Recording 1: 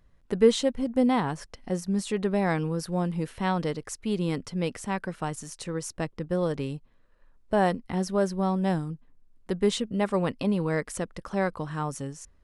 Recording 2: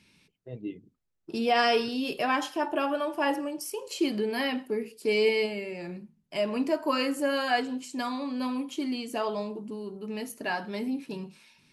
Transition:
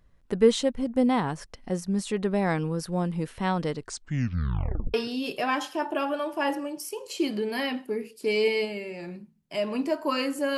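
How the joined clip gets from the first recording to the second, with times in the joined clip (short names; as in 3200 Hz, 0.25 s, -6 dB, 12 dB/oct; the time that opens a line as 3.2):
recording 1
3.75 tape stop 1.19 s
4.94 switch to recording 2 from 1.75 s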